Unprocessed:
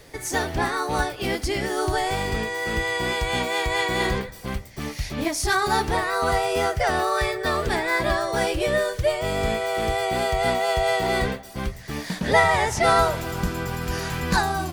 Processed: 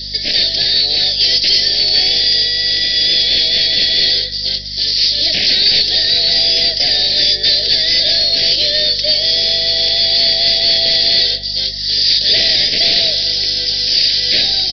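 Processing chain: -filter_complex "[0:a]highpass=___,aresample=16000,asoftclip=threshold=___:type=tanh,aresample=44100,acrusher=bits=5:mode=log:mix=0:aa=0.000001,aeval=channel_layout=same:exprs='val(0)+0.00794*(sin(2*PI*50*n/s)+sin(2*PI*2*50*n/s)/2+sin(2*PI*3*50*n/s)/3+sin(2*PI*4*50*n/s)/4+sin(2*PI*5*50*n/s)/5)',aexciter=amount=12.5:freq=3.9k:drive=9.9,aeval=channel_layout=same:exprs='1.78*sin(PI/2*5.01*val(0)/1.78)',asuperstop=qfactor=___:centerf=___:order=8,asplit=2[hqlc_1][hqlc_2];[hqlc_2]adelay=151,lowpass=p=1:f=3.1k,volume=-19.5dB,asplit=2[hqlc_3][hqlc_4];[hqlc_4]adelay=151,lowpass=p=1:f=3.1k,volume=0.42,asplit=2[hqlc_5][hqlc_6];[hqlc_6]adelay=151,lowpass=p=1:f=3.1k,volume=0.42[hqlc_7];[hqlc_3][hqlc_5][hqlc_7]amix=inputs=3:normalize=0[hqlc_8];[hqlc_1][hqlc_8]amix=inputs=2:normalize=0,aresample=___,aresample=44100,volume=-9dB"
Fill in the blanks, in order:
760, -23.5dB, 0.97, 1100, 11025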